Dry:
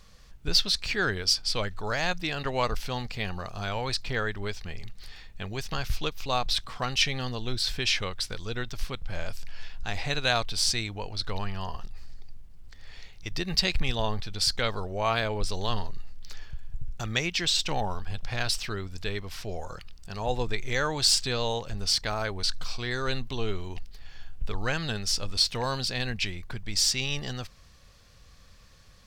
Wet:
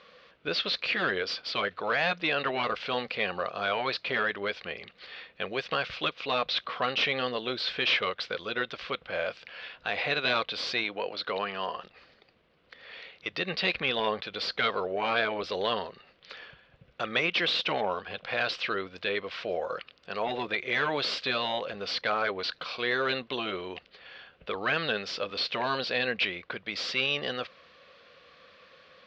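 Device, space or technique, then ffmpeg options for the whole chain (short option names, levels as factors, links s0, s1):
overdrive pedal into a guitar cabinet: -filter_complex "[0:a]asplit=2[s0][s1];[s1]highpass=f=720:p=1,volume=10,asoftclip=type=tanh:threshold=0.473[s2];[s0][s2]amix=inputs=2:normalize=0,lowpass=f=3000:p=1,volume=0.501,highpass=84,equalizer=f=110:t=q:w=4:g=-8,equalizer=f=510:t=q:w=4:g=8,equalizer=f=860:t=q:w=4:g=-8,equalizer=f=1800:t=q:w=4:g=-3,lowpass=f=3700:w=0.5412,lowpass=f=3700:w=1.3066,asettb=1/sr,asplit=3[s3][s4][s5];[s3]atrim=end=10.844[s6];[s4]atrim=start=10.84:end=11.77,asetpts=PTS-STARTPTS,afade=t=in:d=0.004:c=qsin,afade=t=out:st=0.926:d=0.004:c=qsin,highpass=140[s7];[s5]atrim=start=11.766[s8];[s6][s7]acrossfade=d=0.004:c1=hsin:c2=qsin[s9];[s9][s8]acrossfade=d=0.004:c1=qsin:c2=hsin,afftfilt=real='re*lt(hypot(re,im),0.631)':imag='im*lt(hypot(re,im),0.631)':win_size=1024:overlap=0.75,lowshelf=f=150:g=-9.5,volume=0.631"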